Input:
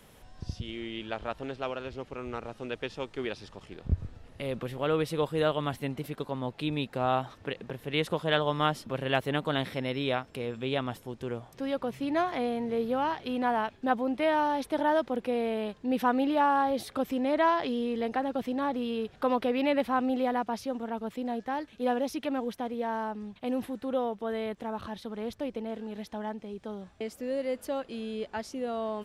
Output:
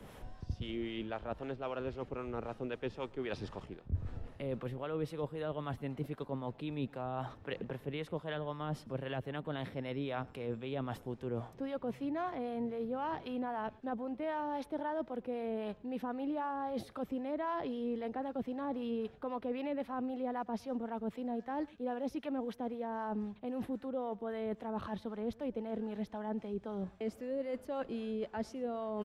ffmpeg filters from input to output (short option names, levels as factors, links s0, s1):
-filter_complex "[0:a]acrossover=split=130[s0][s1];[s1]alimiter=limit=0.119:level=0:latency=1:release=374[s2];[s0][s2]amix=inputs=2:normalize=0,highshelf=f=2400:g=-11,areverse,acompressor=threshold=0.00891:ratio=6,areverse,acrossover=split=640[s3][s4];[s3]aeval=exprs='val(0)*(1-0.5/2+0.5/2*cos(2*PI*3.8*n/s))':c=same[s5];[s4]aeval=exprs='val(0)*(1-0.5/2-0.5/2*cos(2*PI*3.8*n/s))':c=same[s6];[s5][s6]amix=inputs=2:normalize=0,asplit=2[s7][s8];[s8]adelay=110.8,volume=0.0631,highshelf=f=4000:g=-2.49[s9];[s7][s9]amix=inputs=2:normalize=0,volume=2.51"